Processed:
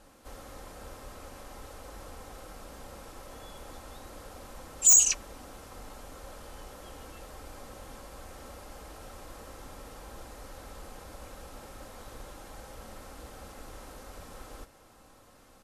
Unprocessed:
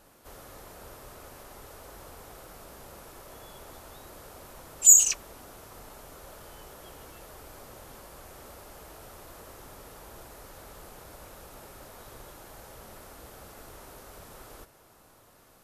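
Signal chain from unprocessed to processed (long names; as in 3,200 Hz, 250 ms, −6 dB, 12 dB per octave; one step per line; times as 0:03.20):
low-pass filter 10,000 Hz 12 dB per octave
low-shelf EQ 160 Hz +4 dB
comb filter 3.8 ms, depth 38%
wave folding −11.5 dBFS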